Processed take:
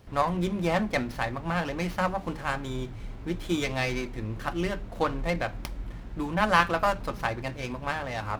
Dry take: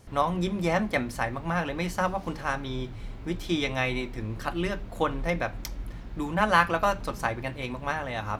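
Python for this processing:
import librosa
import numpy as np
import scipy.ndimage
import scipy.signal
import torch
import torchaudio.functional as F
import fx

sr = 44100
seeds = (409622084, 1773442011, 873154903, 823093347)

y = fx.running_max(x, sr, window=5)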